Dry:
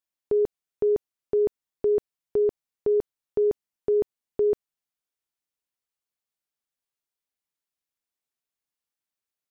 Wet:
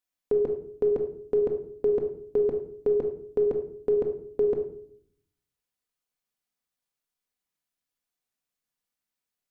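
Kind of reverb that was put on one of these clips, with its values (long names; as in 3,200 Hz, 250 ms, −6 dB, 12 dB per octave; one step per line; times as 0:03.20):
rectangular room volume 970 cubic metres, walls furnished, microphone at 1.9 metres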